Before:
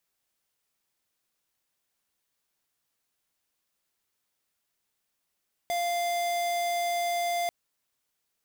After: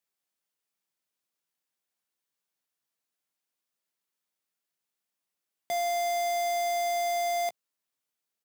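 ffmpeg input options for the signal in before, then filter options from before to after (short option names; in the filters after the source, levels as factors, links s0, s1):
-f lavfi -i "aevalsrc='0.0376*(2*lt(mod(695*t,1),0.5)-1)':d=1.79:s=44100"
-filter_complex "[0:a]highpass=f=130:w=0.5412,highpass=f=130:w=1.3066,aeval=exprs='0.075*(cos(1*acos(clip(val(0)/0.075,-1,1)))-cos(1*PI/2))+0.00119*(cos(2*acos(clip(val(0)/0.075,-1,1)))-cos(2*PI/2))+0.0075*(cos(3*acos(clip(val(0)/0.075,-1,1)))-cos(3*PI/2))+0.00299*(cos(7*acos(clip(val(0)/0.075,-1,1)))-cos(7*PI/2))':c=same,asplit=2[s0][s1];[s1]adelay=16,volume=0.266[s2];[s0][s2]amix=inputs=2:normalize=0"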